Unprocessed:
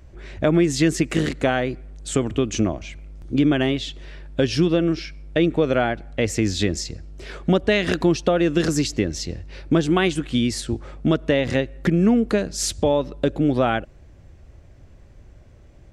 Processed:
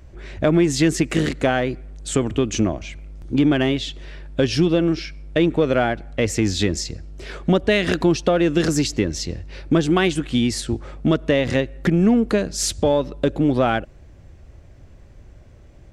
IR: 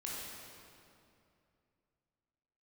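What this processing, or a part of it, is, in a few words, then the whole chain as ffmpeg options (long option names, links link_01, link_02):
parallel distortion: -filter_complex "[0:a]asplit=2[link_01][link_02];[link_02]asoftclip=type=hard:threshold=-19.5dB,volume=-12dB[link_03];[link_01][link_03]amix=inputs=2:normalize=0"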